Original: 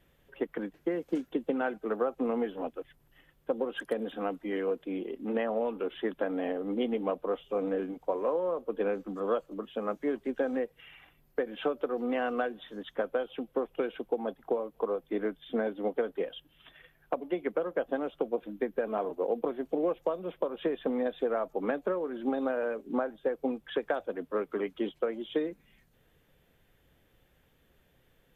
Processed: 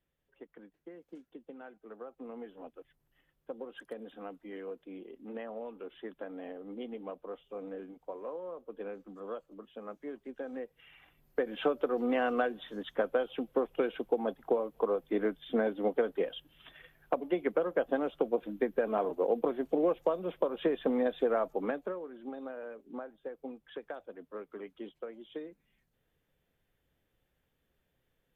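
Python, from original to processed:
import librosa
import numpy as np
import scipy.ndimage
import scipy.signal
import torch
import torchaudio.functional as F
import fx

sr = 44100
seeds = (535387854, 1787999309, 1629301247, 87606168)

y = fx.gain(x, sr, db=fx.line((1.76, -18.0), (2.8, -11.0), (10.38, -11.0), (11.53, 1.0), (21.47, 1.0), (22.18, -11.5)))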